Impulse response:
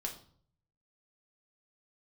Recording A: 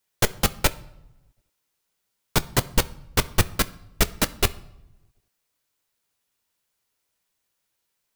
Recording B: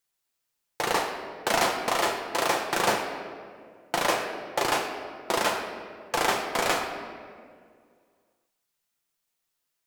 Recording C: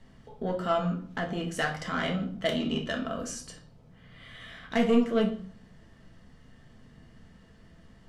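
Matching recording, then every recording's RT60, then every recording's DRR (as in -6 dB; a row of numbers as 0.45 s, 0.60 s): C; no single decay rate, 2.0 s, 0.55 s; 12.5 dB, 1.5 dB, 0.5 dB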